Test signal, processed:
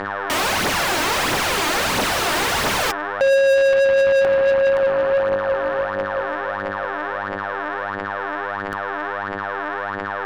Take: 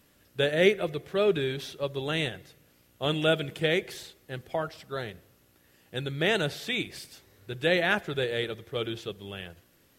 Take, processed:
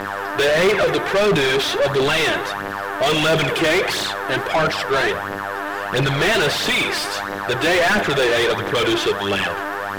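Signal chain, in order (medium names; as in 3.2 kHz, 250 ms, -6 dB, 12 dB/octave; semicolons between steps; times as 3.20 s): mains buzz 100 Hz, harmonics 18, -49 dBFS -2 dB/octave; phaser 1.5 Hz, delay 3.4 ms, feedback 52%; overdrive pedal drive 39 dB, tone 2.5 kHz, clips at -5 dBFS; trim -3.5 dB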